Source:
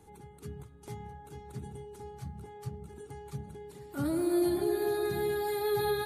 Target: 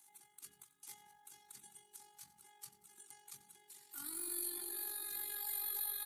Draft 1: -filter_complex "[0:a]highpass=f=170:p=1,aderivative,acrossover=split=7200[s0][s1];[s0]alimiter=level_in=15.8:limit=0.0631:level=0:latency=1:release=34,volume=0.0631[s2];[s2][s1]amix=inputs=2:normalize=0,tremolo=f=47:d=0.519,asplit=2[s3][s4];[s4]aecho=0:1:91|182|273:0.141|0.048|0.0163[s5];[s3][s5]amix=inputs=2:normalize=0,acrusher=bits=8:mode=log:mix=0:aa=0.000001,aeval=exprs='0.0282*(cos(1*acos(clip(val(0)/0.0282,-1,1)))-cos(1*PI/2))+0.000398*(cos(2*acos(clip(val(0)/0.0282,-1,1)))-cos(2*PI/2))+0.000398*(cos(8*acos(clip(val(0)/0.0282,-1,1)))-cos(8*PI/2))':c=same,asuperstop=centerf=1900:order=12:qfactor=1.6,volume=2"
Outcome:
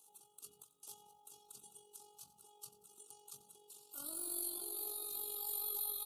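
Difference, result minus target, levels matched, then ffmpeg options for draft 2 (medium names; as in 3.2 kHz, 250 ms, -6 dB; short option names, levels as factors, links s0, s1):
2 kHz band -15.5 dB
-filter_complex "[0:a]highpass=f=170:p=1,aderivative,acrossover=split=7200[s0][s1];[s0]alimiter=level_in=15.8:limit=0.0631:level=0:latency=1:release=34,volume=0.0631[s2];[s2][s1]amix=inputs=2:normalize=0,tremolo=f=47:d=0.519,asplit=2[s3][s4];[s4]aecho=0:1:91|182|273:0.141|0.048|0.0163[s5];[s3][s5]amix=inputs=2:normalize=0,acrusher=bits=8:mode=log:mix=0:aa=0.000001,aeval=exprs='0.0282*(cos(1*acos(clip(val(0)/0.0282,-1,1)))-cos(1*PI/2))+0.000398*(cos(2*acos(clip(val(0)/0.0282,-1,1)))-cos(2*PI/2))+0.000398*(cos(8*acos(clip(val(0)/0.0282,-1,1)))-cos(8*PI/2))':c=same,asuperstop=centerf=540:order=12:qfactor=1.6,volume=2"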